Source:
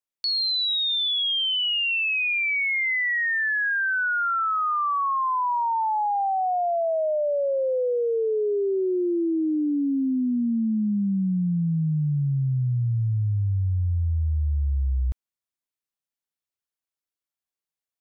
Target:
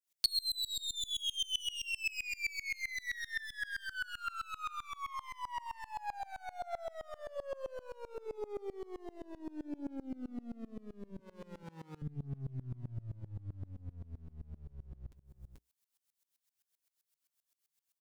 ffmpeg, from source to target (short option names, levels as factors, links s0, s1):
-filter_complex "[0:a]asettb=1/sr,asplit=3[s0][s1][s2];[s0]atrim=end=0.664[s3];[s1]atrim=start=0.66:end=1.1,asetpts=PTS-STARTPTS,afade=t=in:d=0.004:c=qsin,afade=t=out:st=0.436:d=0.004:c=qsin,equalizer=f=1600:w=0.81:g=14[s4];[s2]atrim=start=1.096[s5];[s3][s4]acrossfade=d=0.004:c1=hsin:c2=qsin[s6];[s6][s5]acrossfade=d=0.004:c1=qsin:c2=hsin,aeval=exprs='clip(val(0),-1,0.0422)':c=same,alimiter=level_in=1.12:limit=0.0631:level=0:latency=1:release=11,volume=0.891,asettb=1/sr,asplit=3[s7][s8][s9];[s7]atrim=end=11.194[s10];[s8]atrim=start=11.19:end=12.02,asetpts=PTS-STARTPTS,afade=t=in:d=0.004:c=qsin,afade=t=out:st=0.826:d=0.004:c=qsin,highpass=590[s11];[s9]atrim=start=12.016[s12];[s10][s11]acrossfade=d=0.004:c1=hsin:c2=qsin[s13];[s13][s12]acrossfade=d=0.004:c1=qsin:c2=hsin,aecho=1:1:436:0.133,acompressor=threshold=0.00891:ratio=12,highshelf=f=2900:g=11,aecho=1:1:7.3:0.47,flanger=delay=2:depth=7.5:regen=-75:speed=1:shape=sinusoidal,aeval=exprs='val(0)*pow(10,-25*if(lt(mod(-7.7*n/s,1),2*abs(-7.7)/1000),1-mod(-7.7*n/s,1)/(2*abs(-7.7)/1000),(mod(-7.7*n/s,1)-2*abs(-7.7)/1000)/(1-2*abs(-7.7)/1000))/20)':c=same,volume=3.16"